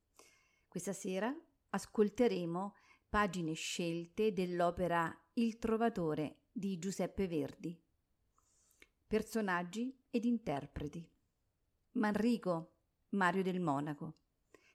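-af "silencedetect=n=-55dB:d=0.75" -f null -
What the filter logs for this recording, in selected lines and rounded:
silence_start: 7.75
silence_end: 8.71 | silence_duration: 0.96
silence_start: 11.05
silence_end: 11.95 | silence_duration: 0.90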